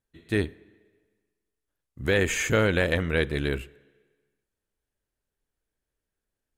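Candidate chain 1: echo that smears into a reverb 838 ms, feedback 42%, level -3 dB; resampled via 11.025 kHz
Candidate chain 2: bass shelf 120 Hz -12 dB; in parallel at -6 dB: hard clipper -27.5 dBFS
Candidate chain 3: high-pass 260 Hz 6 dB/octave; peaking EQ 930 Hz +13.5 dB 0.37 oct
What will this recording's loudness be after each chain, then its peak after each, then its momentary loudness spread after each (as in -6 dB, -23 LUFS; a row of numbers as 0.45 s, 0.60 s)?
-26.5 LUFS, -25.0 LUFS, -26.5 LUFS; -10.5 dBFS, -9.5 dBFS, -7.0 dBFS; 18 LU, 11 LU, 11 LU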